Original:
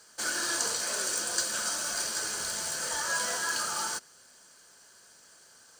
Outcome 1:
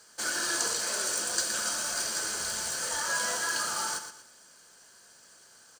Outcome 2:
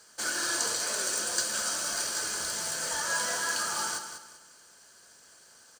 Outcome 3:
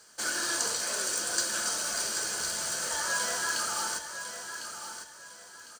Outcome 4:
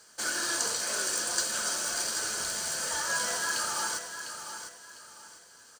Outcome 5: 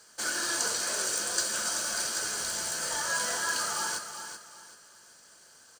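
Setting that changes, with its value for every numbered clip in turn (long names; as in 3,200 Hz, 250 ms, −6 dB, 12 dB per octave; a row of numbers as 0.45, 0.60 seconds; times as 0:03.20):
repeating echo, delay time: 119, 194, 1,053, 702, 382 milliseconds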